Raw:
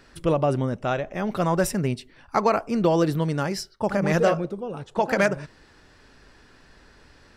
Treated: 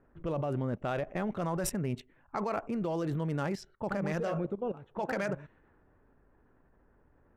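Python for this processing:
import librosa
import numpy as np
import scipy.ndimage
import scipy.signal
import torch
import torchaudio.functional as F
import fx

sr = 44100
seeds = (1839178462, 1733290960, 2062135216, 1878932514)

y = fx.wiener(x, sr, points=9)
y = fx.level_steps(y, sr, step_db=16)
y = fx.env_lowpass(y, sr, base_hz=1000.0, full_db=-30.5)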